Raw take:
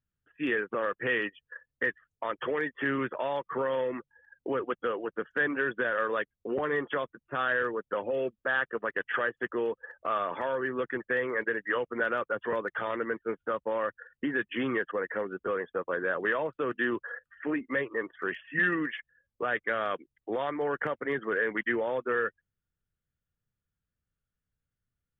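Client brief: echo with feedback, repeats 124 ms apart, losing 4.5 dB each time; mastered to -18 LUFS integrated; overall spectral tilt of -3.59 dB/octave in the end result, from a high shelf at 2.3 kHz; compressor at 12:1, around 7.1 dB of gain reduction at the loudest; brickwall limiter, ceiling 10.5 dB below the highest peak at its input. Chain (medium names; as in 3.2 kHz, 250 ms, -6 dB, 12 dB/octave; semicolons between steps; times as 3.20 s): treble shelf 2.3 kHz -5 dB; compression 12:1, threshold -32 dBFS; peak limiter -32.5 dBFS; feedback delay 124 ms, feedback 60%, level -4.5 dB; trim +22.5 dB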